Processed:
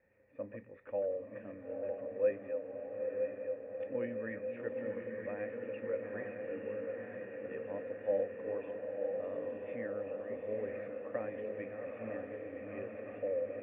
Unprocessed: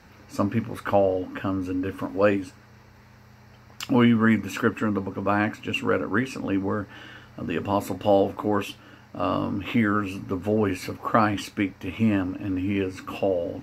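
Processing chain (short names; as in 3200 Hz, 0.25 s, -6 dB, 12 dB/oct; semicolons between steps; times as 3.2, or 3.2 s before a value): regenerating reverse delay 0.479 s, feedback 76%, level -9 dB; vocal tract filter e; diffused feedback echo 0.911 s, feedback 67%, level -5 dB; gain -7.5 dB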